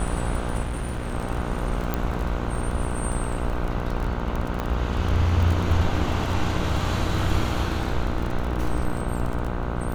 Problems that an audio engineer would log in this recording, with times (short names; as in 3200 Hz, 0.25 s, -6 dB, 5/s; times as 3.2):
buzz 60 Hz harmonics 26 -29 dBFS
crackle 23/s -27 dBFS
0.61–1.13 clipped -24.5 dBFS
1.94 pop -11 dBFS
4.6 pop -14 dBFS